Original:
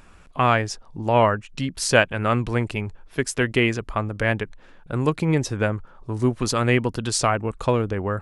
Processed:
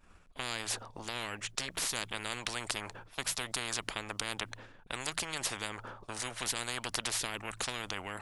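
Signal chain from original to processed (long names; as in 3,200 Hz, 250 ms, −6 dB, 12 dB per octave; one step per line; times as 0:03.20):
hum removal 55.16 Hz, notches 3
downward expander −35 dBFS
every bin compressed towards the loudest bin 10 to 1
level −6 dB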